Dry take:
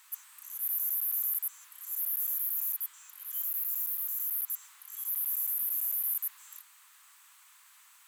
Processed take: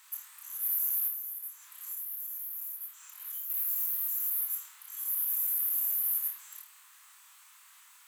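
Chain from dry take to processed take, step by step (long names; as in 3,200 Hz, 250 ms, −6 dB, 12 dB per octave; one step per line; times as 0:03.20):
0:01.07–0:03.50: downward compressor 6 to 1, threshold −36 dBFS, peak gain reduction 10.5 dB
flutter between parallel walls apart 4.5 metres, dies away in 0.32 s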